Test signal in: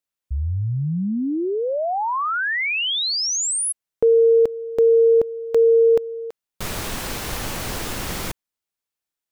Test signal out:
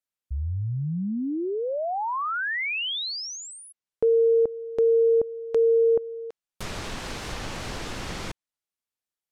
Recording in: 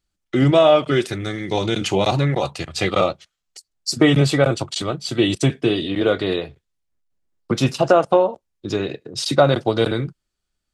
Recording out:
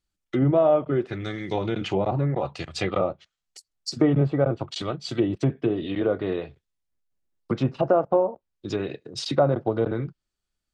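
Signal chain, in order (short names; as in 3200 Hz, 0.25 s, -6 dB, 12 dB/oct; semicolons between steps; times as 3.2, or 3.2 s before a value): treble ducked by the level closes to 1000 Hz, closed at -14.5 dBFS; gain -5 dB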